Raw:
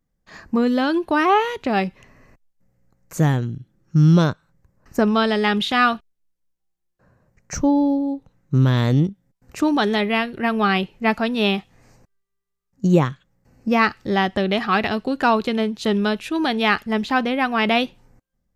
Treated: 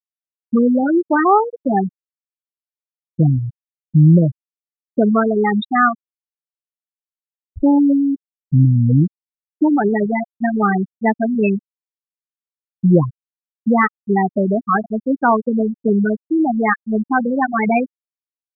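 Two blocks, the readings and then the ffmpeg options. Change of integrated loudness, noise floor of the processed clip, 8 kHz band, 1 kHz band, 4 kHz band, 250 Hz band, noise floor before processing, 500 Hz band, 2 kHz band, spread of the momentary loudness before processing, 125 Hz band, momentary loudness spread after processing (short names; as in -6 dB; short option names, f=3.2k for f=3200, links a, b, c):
+3.0 dB, under -85 dBFS, under -40 dB, +2.5 dB, under -15 dB, +4.5 dB, -75 dBFS, +2.5 dB, -1.0 dB, 8 LU, +4.0 dB, 7 LU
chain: -filter_complex "[0:a]afftfilt=real='re*gte(hypot(re,im),0.501)':imag='im*gte(hypot(re,im),0.501)':win_size=1024:overlap=0.75,asplit=2[a][b];[b]alimiter=limit=-16dB:level=0:latency=1:release=284,volume=-1dB[c];[a][c]amix=inputs=2:normalize=0,volume=1dB"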